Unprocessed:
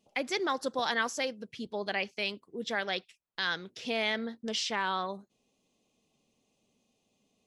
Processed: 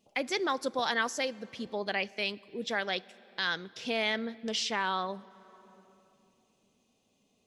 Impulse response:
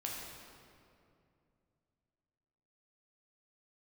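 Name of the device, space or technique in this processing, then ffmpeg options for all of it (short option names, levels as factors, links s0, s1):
ducked reverb: -filter_complex "[0:a]asplit=3[s0][s1][s2];[1:a]atrim=start_sample=2205[s3];[s1][s3]afir=irnorm=-1:irlink=0[s4];[s2]apad=whole_len=329288[s5];[s4][s5]sidechaincompress=threshold=0.0126:ratio=6:attack=10:release=784,volume=0.316[s6];[s0][s6]amix=inputs=2:normalize=0"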